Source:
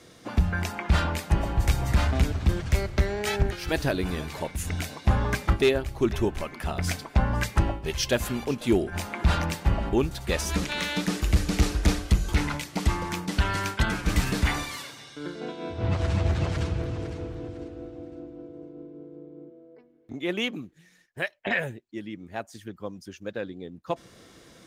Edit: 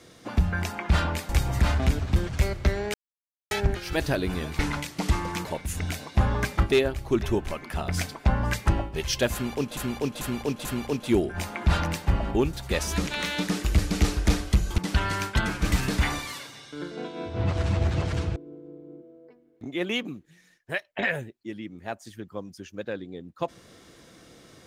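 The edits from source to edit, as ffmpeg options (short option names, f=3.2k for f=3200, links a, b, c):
-filter_complex "[0:a]asplit=10[a][b][c][d][e][f][g][h][i][j];[a]atrim=end=1.292[k];[b]atrim=start=1.618:end=3.27,asetpts=PTS-STARTPTS,afade=t=out:st=1.648:d=0.004:c=hsin,apad=pad_dur=0.57[l];[c]atrim=start=3.27:end=4.352,asetpts=PTS-STARTPTS,afade=t=in:d=0.004:c=hsin[m];[d]atrim=start=12.358:end=13.222[n];[e]atrim=start=4.348:end=8.672[o];[f]atrim=start=8.228:end=8.672[p];[g]atrim=start=8.228:end=8.672[q];[h]atrim=start=8.228:end=12.362[r];[i]atrim=start=13.218:end=16.802[s];[j]atrim=start=18.838[t];[l][m]concat=n=2:v=0:a=1[u];[k][u]acrossfade=d=0.004:c1=hsin:c2=hsin[v];[v][n]acrossfade=d=0.004:c1=hsin:c2=hsin[w];[w][o]acrossfade=d=0.004:c1=hsin:c2=hsin[x];[x][p]acrossfade=d=0.004:c1=hsin:c2=hsin[y];[y][q]acrossfade=d=0.004:c1=hsin:c2=hsin[z];[z][r]acrossfade=d=0.004:c1=hsin:c2=hsin[aa];[aa][s]acrossfade=d=0.004:c1=hsin:c2=hsin[ab];[ab][t]acrossfade=d=0.004:c1=hsin:c2=hsin"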